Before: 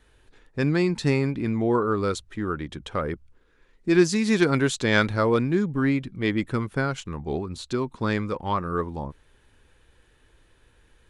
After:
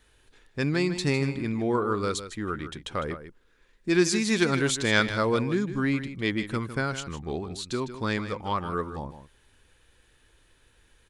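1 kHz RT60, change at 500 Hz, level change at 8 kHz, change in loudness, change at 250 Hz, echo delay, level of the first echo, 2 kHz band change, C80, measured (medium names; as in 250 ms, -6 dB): no reverb, -3.5 dB, +3.0 dB, -2.5 dB, -3.5 dB, 155 ms, -11.5 dB, -0.5 dB, no reverb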